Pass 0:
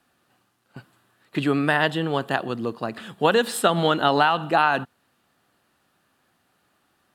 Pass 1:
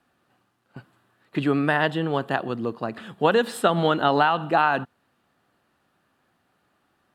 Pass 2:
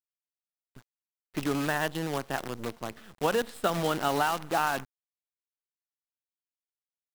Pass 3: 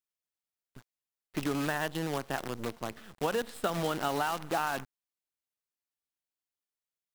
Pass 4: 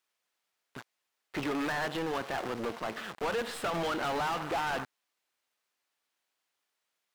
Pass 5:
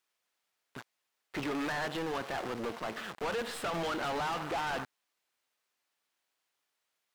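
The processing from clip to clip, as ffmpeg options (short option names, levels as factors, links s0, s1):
-af "highshelf=f=3400:g=-8.5"
-af "acrusher=bits=5:dc=4:mix=0:aa=0.000001,volume=0.422"
-af "acompressor=threshold=0.0355:ratio=2"
-filter_complex "[0:a]asplit=2[s0][s1];[s1]highpass=f=720:p=1,volume=39.8,asoftclip=type=tanh:threshold=0.168[s2];[s0][s2]amix=inputs=2:normalize=0,lowpass=f=2800:p=1,volume=0.501,volume=0.376"
-af "asoftclip=type=tanh:threshold=0.0355"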